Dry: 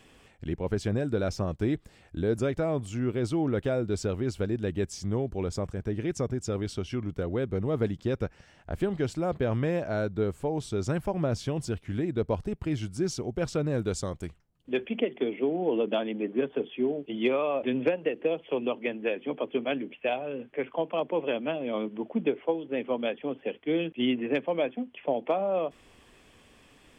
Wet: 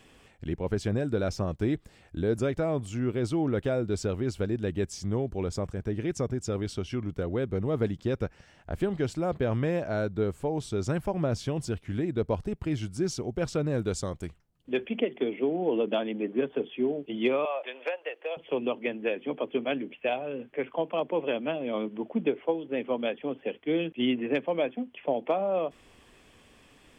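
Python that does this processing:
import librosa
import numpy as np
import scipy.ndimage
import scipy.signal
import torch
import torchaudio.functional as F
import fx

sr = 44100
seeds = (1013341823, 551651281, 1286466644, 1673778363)

y = fx.highpass(x, sr, hz=590.0, slope=24, at=(17.45, 18.37))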